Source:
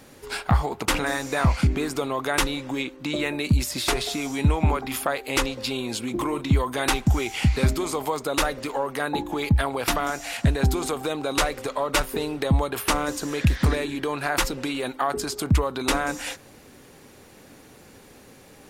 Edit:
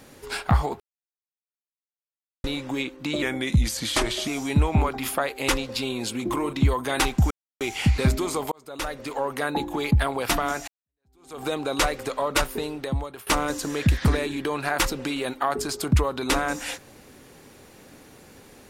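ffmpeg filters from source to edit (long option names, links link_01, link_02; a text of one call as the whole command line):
ffmpeg -i in.wav -filter_complex "[0:a]asplit=9[link_01][link_02][link_03][link_04][link_05][link_06][link_07][link_08][link_09];[link_01]atrim=end=0.8,asetpts=PTS-STARTPTS,afade=type=out:start_time=0.796:duration=0.004:curve=hsin[link_10];[link_02]atrim=start=0.8:end=2.44,asetpts=PTS-STARTPTS,volume=0[link_11];[link_03]atrim=start=2.44:end=3.224,asetpts=PTS-STARTPTS,afade=type=in:duration=0.004:curve=hsin[link_12];[link_04]atrim=start=3.22:end=4.16,asetpts=PTS-STARTPTS,asetrate=39249,aresample=44100[link_13];[link_05]atrim=start=4.156:end=7.19,asetpts=PTS-STARTPTS,afade=type=out:start_time=3.03:duration=0.004:curve=hsin,apad=pad_dur=0.3[link_14];[link_06]atrim=start=7.19:end=8.1,asetpts=PTS-STARTPTS,afade=type=in:duration=0.004:curve=hsin,afade=type=out:start_time=0.906:duration=0.004:curve=hsin[link_15];[link_07]atrim=start=8.1:end=10.26,asetpts=PTS-STARTPTS,afade=type=in:duration=0.76,afade=type=out:start_time=2.156:duration=0.004:curve=hsin[link_16];[link_08]atrim=start=10.26:end=12.85,asetpts=PTS-STARTPTS,afade=type=in:duration=0.75:curve=exp,afade=type=out:start_time=1.7:duration=0.89:silence=0.16788[link_17];[link_09]atrim=start=12.85,asetpts=PTS-STARTPTS,afade=type=in:duration=0.004:curve=hsin:silence=0.16788[link_18];[link_10][link_11][link_12]concat=n=3:v=0:a=1[link_19];[link_19][link_13]acrossfade=duration=0.004:curve1=hsin:curve2=hsin[link_20];[link_14][link_15][link_16][link_17][link_18]concat=n=5:v=0:a=1[link_21];[link_20][link_21]acrossfade=duration=0.004:curve1=hsin:curve2=hsin" out.wav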